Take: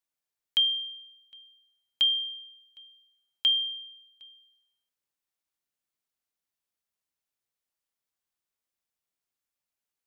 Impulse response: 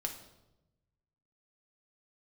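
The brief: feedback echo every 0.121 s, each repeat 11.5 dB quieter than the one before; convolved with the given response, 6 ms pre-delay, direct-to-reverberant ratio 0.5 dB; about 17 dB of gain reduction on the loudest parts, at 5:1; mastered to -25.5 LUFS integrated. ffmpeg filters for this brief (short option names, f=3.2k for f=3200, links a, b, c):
-filter_complex "[0:a]acompressor=threshold=-40dB:ratio=5,aecho=1:1:121|242|363:0.266|0.0718|0.0194,asplit=2[a][b];[1:a]atrim=start_sample=2205,adelay=6[c];[b][c]afir=irnorm=-1:irlink=0,volume=-1dB[d];[a][d]amix=inputs=2:normalize=0,volume=11.5dB"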